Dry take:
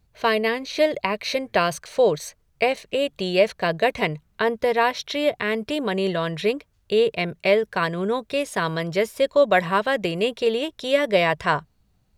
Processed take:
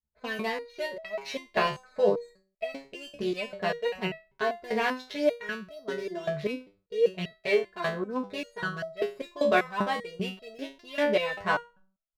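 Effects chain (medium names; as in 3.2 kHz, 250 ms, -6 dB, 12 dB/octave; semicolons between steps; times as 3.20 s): local Wiener filter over 15 samples; expander -49 dBFS; comb 4.7 ms, depth 57%; de-hum 191.8 Hz, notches 8; resonator arpeggio 5.1 Hz 73–650 Hz; trim +4 dB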